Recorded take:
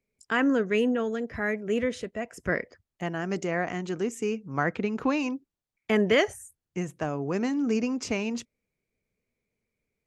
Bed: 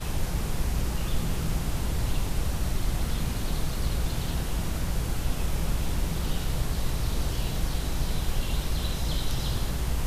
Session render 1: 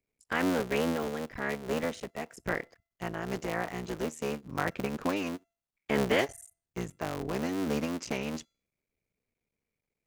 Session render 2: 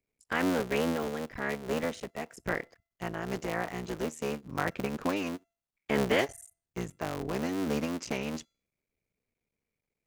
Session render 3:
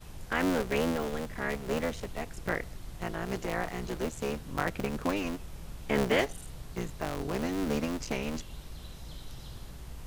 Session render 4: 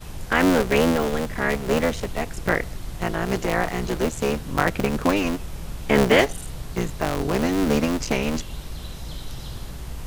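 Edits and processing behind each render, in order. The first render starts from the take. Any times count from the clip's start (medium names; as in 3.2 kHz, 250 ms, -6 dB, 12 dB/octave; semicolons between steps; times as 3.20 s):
cycle switcher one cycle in 3, muted; feedback comb 680 Hz, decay 0.47 s, mix 30%
no audible change
add bed -16 dB
trim +10 dB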